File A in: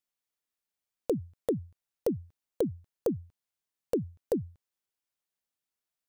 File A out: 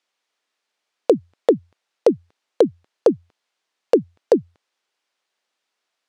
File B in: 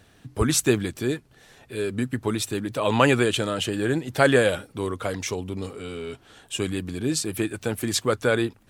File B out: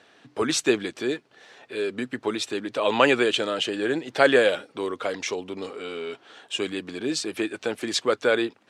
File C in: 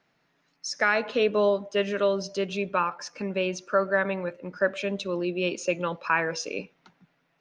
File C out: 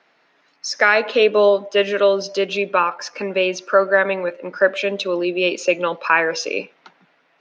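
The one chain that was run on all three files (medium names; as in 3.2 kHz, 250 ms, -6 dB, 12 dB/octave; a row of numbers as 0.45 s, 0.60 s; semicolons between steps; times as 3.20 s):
dynamic bell 1.1 kHz, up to -4 dB, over -36 dBFS, Q 0.72; band-pass 370–4900 Hz; peak normalisation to -2 dBFS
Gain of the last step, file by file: +17.0 dB, +4.0 dB, +12.0 dB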